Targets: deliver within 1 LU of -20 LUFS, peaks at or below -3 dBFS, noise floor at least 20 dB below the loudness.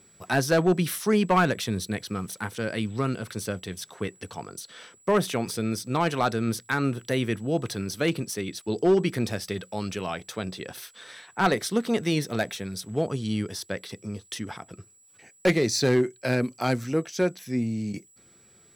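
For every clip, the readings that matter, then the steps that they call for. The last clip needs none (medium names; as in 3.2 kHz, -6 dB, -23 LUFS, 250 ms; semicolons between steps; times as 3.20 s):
clipped samples 0.4%; clipping level -14.0 dBFS; steady tone 7.8 kHz; tone level -56 dBFS; loudness -27.0 LUFS; peak level -14.0 dBFS; loudness target -20.0 LUFS
-> clip repair -14 dBFS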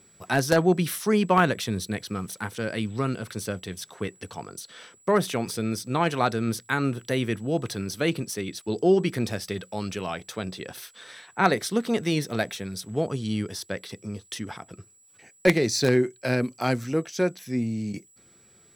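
clipped samples 0.0%; steady tone 7.8 kHz; tone level -56 dBFS
-> band-stop 7.8 kHz, Q 30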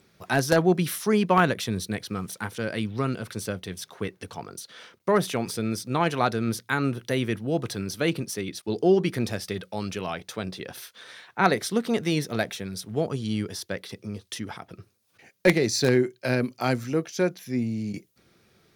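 steady tone not found; loudness -26.5 LUFS; peak level -5.0 dBFS; loudness target -20.0 LUFS
-> trim +6.5 dB; peak limiter -3 dBFS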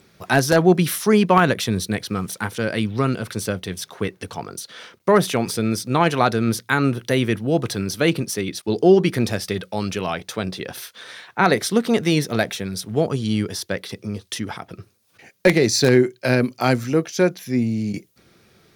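loudness -20.5 LUFS; peak level -3.0 dBFS; noise floor -59 dBFS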